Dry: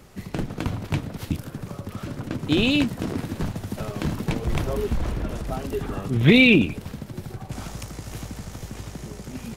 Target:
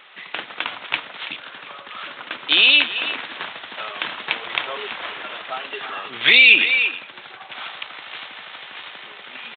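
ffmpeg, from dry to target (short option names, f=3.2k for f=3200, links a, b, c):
-filter_complex "[0:a]highpass=1.2k,aemphasis=mode=production:type=75fm,asplit=2[a][b];[b]adelay=330,highpass=300,lowpass=3.4k,asoftclip=type=hard:threshold=-12dB,volume=-12dB[c];[a][c]amix=inputs=2:normalize=0,aresample=8000,aresample=44100,alimiter=level_in=12dB:limit=-1dB:release=50:level=0:latency=1,volume=-1dB"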